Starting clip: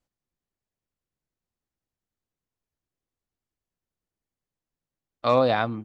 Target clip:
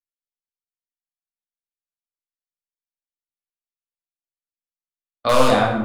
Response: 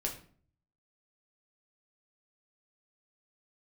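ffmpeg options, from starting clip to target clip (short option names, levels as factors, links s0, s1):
-filter_complex "[0:a]agate=range=0.0126:threshold=0.02:ratio=16:detection=peak,acrossover=split=500[s0][s1];[s0]aeval=exprs='(mod(8.41*val(0)+1,2)-1)/8.41':c=same[s2];[s2][s1]amix=inputs=2:normalize=0[s3];[1:a]atrim=start_sample=2205,asetrate=23373,aresample=44100[s4];[s3][s4]afir=irnorm=-1:irlink=0"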